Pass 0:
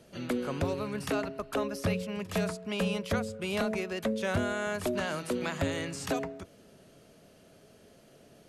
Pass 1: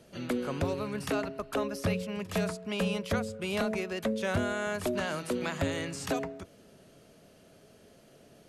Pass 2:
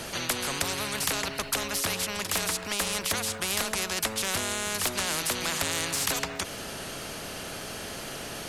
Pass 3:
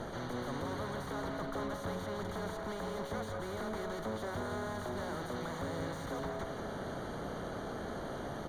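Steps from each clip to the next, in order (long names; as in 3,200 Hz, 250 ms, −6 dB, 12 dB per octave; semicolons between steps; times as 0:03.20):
no processing that can be heard
in parallel at −3.5 dB: soft clipping −29.5 dBFS, distortion −12 dB; on the sum: every bin compressed towards the loudest bin 4 to 1; level +9 dB
tube saturation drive 37 dB, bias 0.7; moving average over 17 samples; repeating echo 172 ms, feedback 52%, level −7 dB; level +4.5 dB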